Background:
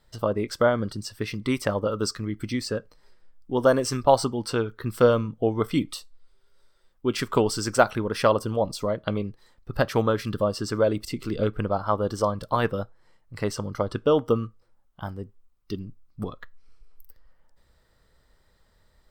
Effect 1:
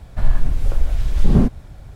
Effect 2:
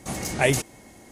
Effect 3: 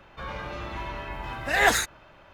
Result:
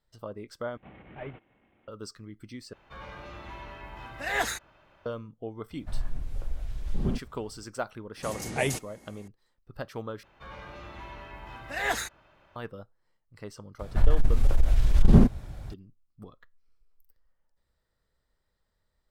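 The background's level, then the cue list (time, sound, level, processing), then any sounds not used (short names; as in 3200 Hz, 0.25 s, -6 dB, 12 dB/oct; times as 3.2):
background -14.5 dB
0.77 replace with 2 -17.5 dB + CVSD 16 kbps
2.73 replace with 3 -8 dB
5.7 add 1 -15 dB
8.17 add 2 -7 dB
10.23 replace with 3 -8.5 dB
13.79 add 1 -1.5 dB + core saturation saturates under 38 Hz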